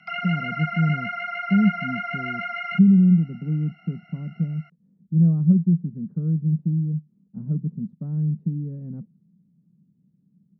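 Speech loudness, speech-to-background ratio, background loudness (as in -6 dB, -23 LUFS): -23.0 LUFS, 6.0 dB, -29.0 LUFS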